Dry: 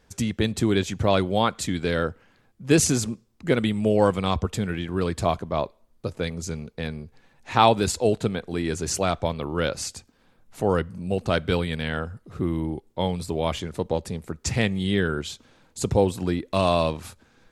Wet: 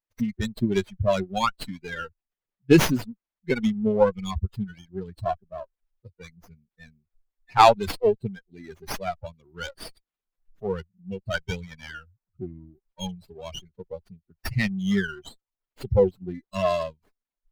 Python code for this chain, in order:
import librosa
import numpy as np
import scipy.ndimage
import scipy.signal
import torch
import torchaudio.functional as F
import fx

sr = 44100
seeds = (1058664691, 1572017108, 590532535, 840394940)

y = fx.bin_expand(x, sr, power=3.0)
y = fx.running_max(y, sr, window=5)
y = y * 10.0 ** (6.5 / 20.0)